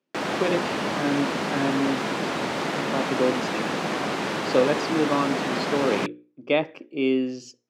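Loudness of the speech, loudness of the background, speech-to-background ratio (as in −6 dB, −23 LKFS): −26.5 LKFS, −27.0 LKFS, 0.5 dB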